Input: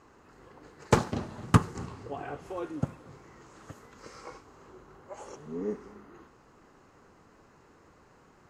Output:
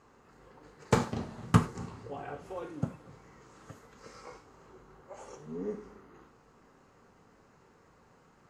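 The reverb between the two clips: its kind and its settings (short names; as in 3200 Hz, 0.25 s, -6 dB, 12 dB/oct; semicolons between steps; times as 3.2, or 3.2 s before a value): non-linear reverb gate 0.13 s falling, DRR 5.5 dB; gain -4 dB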